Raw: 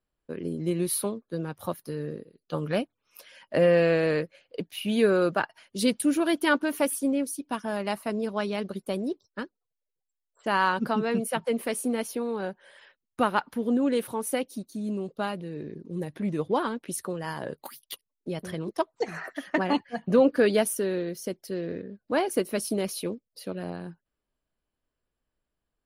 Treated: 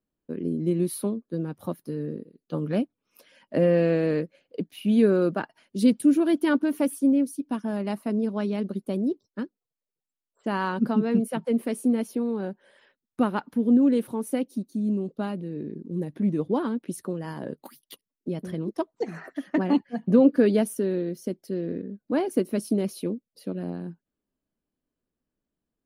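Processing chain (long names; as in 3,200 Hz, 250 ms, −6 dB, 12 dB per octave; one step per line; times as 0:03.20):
parametric band 240 Hz +13.5 dB 1.9 octaves
level −7 dB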